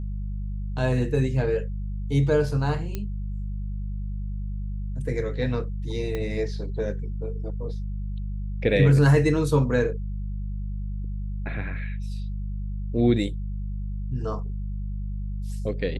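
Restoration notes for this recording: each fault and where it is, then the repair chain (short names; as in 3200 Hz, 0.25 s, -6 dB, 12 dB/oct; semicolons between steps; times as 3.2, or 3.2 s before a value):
hum 50 Hz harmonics 4 -30 dBFS
2.95 pop -16 dBFS
6.15 pop -17 dBFS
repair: de-click; de-hum 50 Hz, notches 4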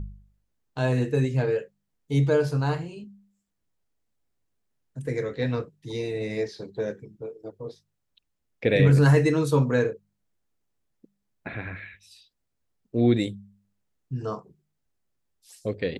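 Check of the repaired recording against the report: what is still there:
6.15 pop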